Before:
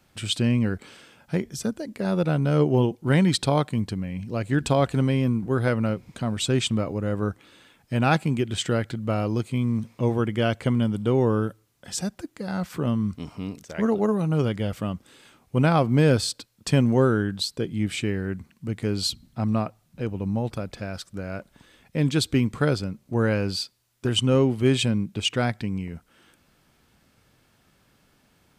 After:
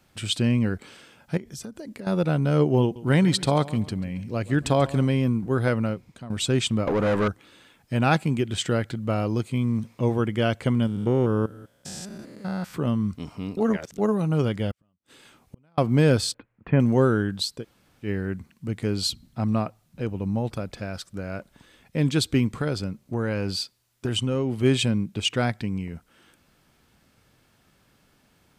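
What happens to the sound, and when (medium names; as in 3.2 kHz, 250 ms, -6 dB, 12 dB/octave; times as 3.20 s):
1.37–2.07 s: compression 12:1, threshold -33 dBFS
2.82–5.05 s: feedback delay 137 ms, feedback 37%, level -18 dB
5.77–6.30 s: fade out linear, to -15 dB
6.87–7.28 s: overdrive pedal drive 28 dB, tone 1.9 kHz, clips at -14.5 dBFS
10.87–12.74 s: spectrogram pixelated in time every 200 ms
13.57–13.98 s: reverse
14.71–15.78 s: inverted gate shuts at -27 dBFS, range -42 dB
16.34–16.80 s: steep low-pass 2.3 kHz
17.60–18.06 s: room tone, crossfade 0.10 s
22.55–24.63 s: compression, threshold -21 dBFS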